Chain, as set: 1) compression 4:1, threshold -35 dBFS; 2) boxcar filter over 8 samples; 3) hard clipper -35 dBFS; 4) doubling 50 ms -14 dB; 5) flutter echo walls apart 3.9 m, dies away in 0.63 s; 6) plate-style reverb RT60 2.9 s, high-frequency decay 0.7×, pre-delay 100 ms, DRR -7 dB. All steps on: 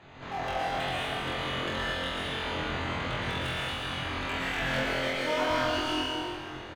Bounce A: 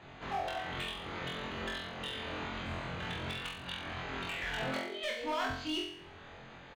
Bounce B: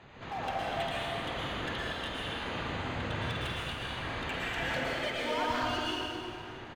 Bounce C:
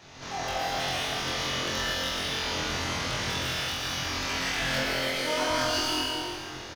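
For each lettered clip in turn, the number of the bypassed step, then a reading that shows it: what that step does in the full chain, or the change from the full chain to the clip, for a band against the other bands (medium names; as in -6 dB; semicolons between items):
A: 6, echo-to-direct 11.5 dB to 2.0 dB; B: 5, echo-to-direct 11.5 dB to 7.0 dB; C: 2, 8 kHz band +13.0 dB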